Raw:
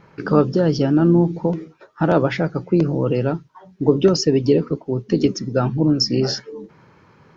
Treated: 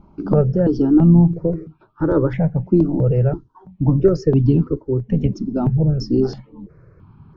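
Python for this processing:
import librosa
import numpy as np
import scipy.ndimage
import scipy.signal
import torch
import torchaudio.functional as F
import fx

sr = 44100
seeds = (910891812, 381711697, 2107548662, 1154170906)

y = fx.tilt_eq(x, sr, slope=-4.5)
y = fx.phaser_held(y, sr, hz=3.0, low_hz=480.0, high_hz=1900.0)
y = y * librosa.db_to_amplitude(-3.0)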